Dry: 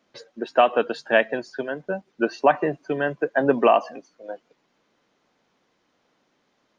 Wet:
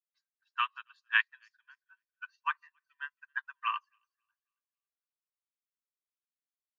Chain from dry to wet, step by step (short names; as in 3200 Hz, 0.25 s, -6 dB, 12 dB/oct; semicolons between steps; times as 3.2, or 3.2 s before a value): steep high-pass 1000 Hz 96 dB/oct; on a send: thin delay 0.273 s, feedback 39%, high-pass 1400 Hz, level -13.5 dB; on the sum: upward expander 2.5:1, over -44 dBFS; gain -1 dB